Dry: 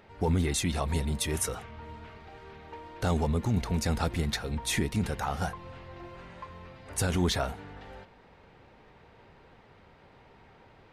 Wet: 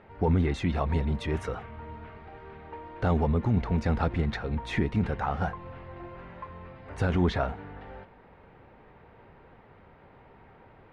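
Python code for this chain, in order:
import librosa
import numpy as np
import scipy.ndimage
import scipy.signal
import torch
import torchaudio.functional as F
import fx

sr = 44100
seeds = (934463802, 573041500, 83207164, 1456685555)

y = scipy.signal.sosfilt(scipy.signal.butter(2, 2100.0, 'lowpass', fs=sr, output='sos'), x)
y = y * 10.0 ** (2.5 / 20.0)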